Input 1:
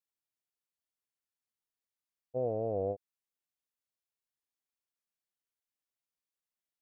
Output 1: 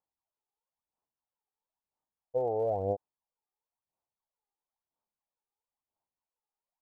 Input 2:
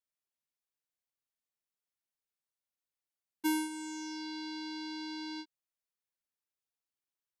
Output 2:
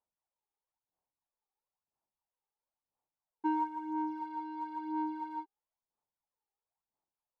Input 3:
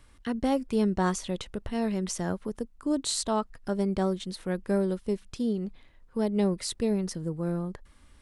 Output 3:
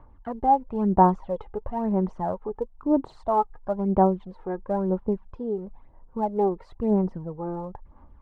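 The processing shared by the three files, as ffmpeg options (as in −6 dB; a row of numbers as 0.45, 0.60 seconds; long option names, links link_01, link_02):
-af "lowpass=frequency=890:width_type=q:width=3.6,aphaser=in_gain=1:out_gain=1:delay=2.5:decay=0.6:speed=1:type=sinusoidal,volume=-2dB"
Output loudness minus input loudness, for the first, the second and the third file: +3.0, +1.5, +4.0 LU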